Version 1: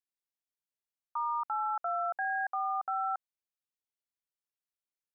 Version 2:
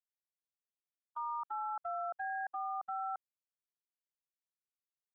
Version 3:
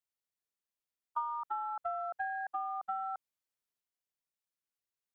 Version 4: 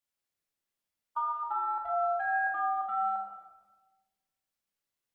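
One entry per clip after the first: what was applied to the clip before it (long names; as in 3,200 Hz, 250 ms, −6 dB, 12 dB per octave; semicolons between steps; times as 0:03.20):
noise gate −33 dBFS, range −39 dB; low-pass filter 1,000 Hz 6 dB per octave; brickwall limiter −39.5 dBFS, peak gain reduction 10.5 dB; level +7.5 dB
transient designer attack +8 dB, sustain +3 dB
rectangular room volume 820 cubic metres, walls mixed, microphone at 2.4 metres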